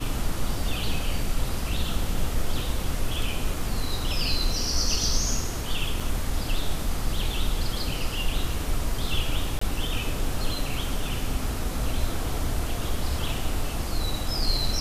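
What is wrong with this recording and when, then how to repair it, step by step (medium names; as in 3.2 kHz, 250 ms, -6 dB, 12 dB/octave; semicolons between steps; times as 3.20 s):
3.54 s: dropout 2.7 ms
6.00 s: dropout 4.5 ms
9.59–9.61 s: dropout 24 ms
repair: interpolate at 3.54 s, 2.7 ms; interpolate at 6.00 s, 4.5 ms; interpolate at 9.59 s, 24 ms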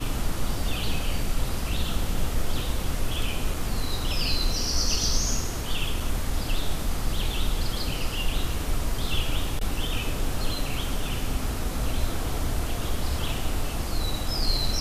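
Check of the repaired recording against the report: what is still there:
nothing left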